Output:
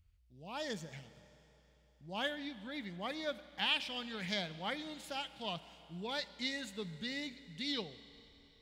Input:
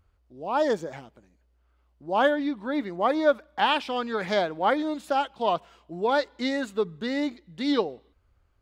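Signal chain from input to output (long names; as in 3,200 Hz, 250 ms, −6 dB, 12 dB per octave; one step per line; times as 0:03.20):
flat-topped bell 630 Hz −15.5 dB 2.9 octaves
four-comb reverb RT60 3.6 s, combs from 25 ms, DRR 14.5 dB
level −3.5 dB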